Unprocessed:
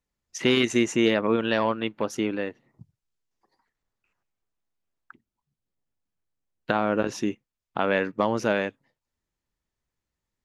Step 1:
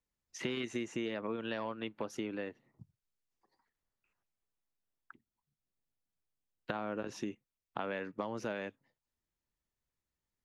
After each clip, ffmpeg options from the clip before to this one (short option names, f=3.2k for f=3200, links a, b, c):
-filter_complex "[0:a]acrossover=split=200|4200[a][b][c];[c]alimiter=level_in=11dB:limit=-24dB:level=0:latency=1:release=20,volume=-11dB[d];[a][b][d]amix=inputs=3:normalize=0,acompressor=threshold=-28dB:ratio=5,volume=-6.5dB"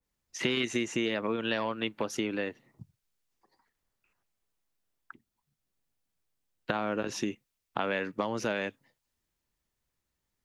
-af "adynamicequalizer=threshold=0.00251:dfrequency=1800:dqfactor=0.7:tfrequency=1800:tqfactor=0.7:attack=5:release=100:ratio=0.375:range=2.5:mode=boostabove:tftype=highshelf,volume=6.5dB"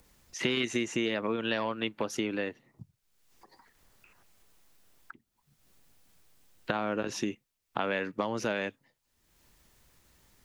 -af "acompressor=mode=upward:threshold=-46dB:ratio=2.5"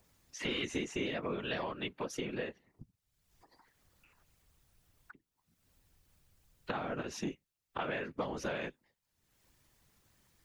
-filter_complex "[0:a]afftfilt=real='hypot(re,im)*cos(2*PI*random(0))':imag='hypot(re,im)*sin(2*PI*random(1))':win_size=512:overlap=0.75,acrossover=split=340[a][b];[a]volume=33.5dB,asoftclip=hard,volume=-33.5dB[c];[c][b]amix=inputs=2:normalize=0"